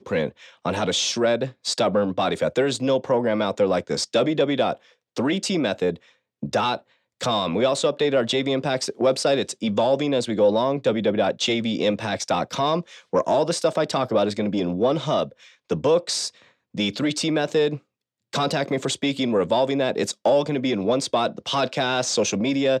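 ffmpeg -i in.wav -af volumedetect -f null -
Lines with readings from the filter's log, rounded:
mean_volume: -22.8 dB
max_volume: -8.9 dB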